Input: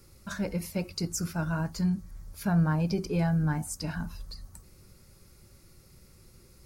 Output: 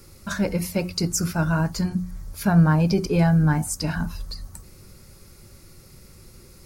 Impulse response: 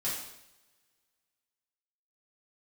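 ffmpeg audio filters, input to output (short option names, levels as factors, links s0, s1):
-af "bandreject=f=60:t=h:w=6,bandreject=f=120:t=h:w=6,bandreject=f=180:t=h:w=6,volume=2.66"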